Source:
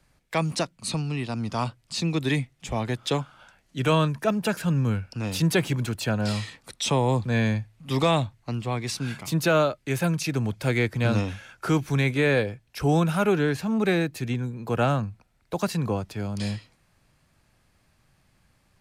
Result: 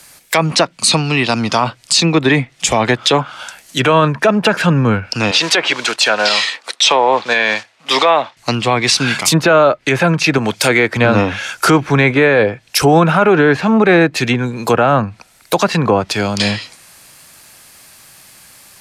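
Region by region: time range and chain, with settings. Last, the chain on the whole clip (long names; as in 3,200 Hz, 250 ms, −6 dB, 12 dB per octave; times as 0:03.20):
0:05.31–0:08.37: one scale factor per block 5 bits + band-pass filter 490–4,200 Hz + one half of a high-frequency compander decoder only
0:10.38–0:10.97: high-pass filter 190 Hz 6 dB per octave + high-shelf EQ 5,200 Hz +6.5 dB
whole clip: treble cut that deepens with the level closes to 1,600 Hz, closed at −22 dBFS; RIAA equalisation recording; boost into a limiter +21 dB; level −1 dB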